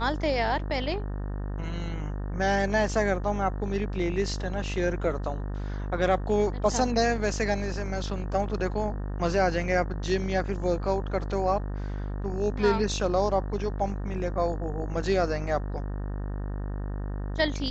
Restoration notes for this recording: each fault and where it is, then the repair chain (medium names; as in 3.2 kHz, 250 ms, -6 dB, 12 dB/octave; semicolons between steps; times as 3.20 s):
buzz 50 Hz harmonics 37 -32 dBFS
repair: de-hum 50 Hz, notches 37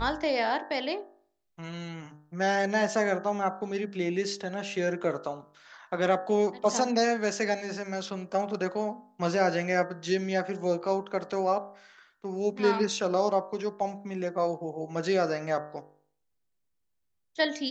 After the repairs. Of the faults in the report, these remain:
nothing left